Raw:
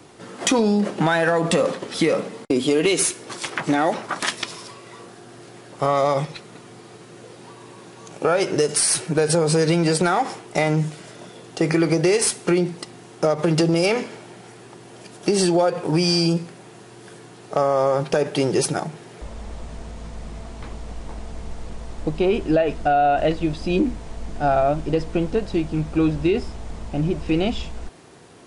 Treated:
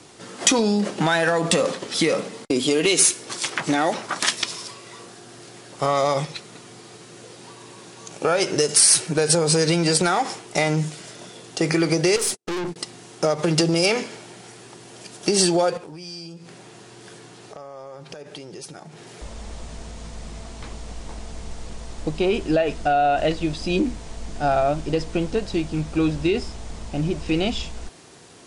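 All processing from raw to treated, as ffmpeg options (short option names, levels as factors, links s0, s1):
-filter_complex "[0:a]asettb=1/sr,asplit=3[s0][s1][s2];[s0]atrim=end=12.164[s3];[s1]atrim=start=12.16:end=12.76,asetpts=PTS-STARTPTS,afade=t=in:d=0.004:c=qsin,afade=t=out:st=0.596:d=0.004:c=qsin,agate=range=0.00251:threshold=0.0282:ratio=16:release=100:detection=peak,equalizer=f=380:t=o:w=2.1:g=9,aeval=exprs='(tanh(15.8*val(0)+0.35)-tanh(0.35))/15.8':c=same[s4];[s2]atrim=start=12.756[s5];[s3][s4]acrossfade=d=0.004:c1=hsin:c2=qsin[s6];[s6][s5]acrossfade=d=0.004:c1=qsin:c2=hsin,asettb=1/sr,asplit=3[s7][s8][s9];[s7]atrim=end=15.774[s10];[s8]atrim=start=15.77:end=19.07,asetpts=PTS-STARTPTS,afade=t=in:d=0.004:c=qsin,afade=t=out:st=3.296:d=0.004:c=qsin,acompressor=threshold=0.0158:ratio=5:attack=3.2:release=140:knee=1:detection=peak,highshelf=f=7200:g=-6.5[s11];[s9]atrim=start=19.066[s12];[s10][s11]acrossfade=d=0.004:c1=hsin:c2=qsin[s13];[s13][s12]acrossfade=d=0.004:c1=qsin:c2=hsin,lowpass=6800,aemphasis=mode=production:type=75fm,volume=0.891"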